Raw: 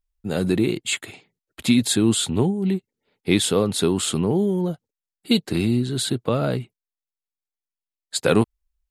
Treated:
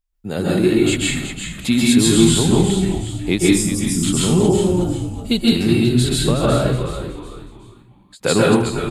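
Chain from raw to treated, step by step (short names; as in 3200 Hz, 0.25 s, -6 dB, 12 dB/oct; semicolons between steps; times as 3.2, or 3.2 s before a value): spectral gain 3.39–4.03, 340–4700 Hz -23 dB; on a send: frequency-shifting echo 0.369 s, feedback 37%, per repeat -82 Hz, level -8.5 dB; on the sum: plate-style reverb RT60 0.54 s, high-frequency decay 0.9×, pre-delay 0.12 s, DRR -4.5 dB; ending taper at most 290 dB/s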